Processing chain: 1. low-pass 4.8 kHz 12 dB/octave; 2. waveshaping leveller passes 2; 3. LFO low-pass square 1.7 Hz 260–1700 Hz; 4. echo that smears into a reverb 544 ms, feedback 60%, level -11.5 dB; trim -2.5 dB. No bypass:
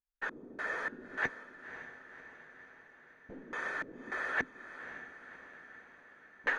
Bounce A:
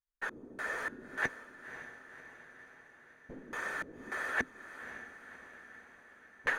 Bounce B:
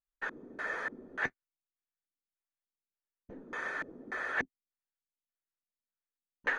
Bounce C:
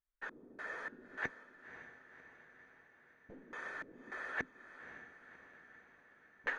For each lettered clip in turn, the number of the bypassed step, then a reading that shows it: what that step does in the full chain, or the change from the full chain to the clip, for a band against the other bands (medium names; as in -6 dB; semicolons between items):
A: 1, 8 kHz band +7.0 dB; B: 4, echo-to-direct -9.5 dB to none; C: 2, crest factor change +3.0 dB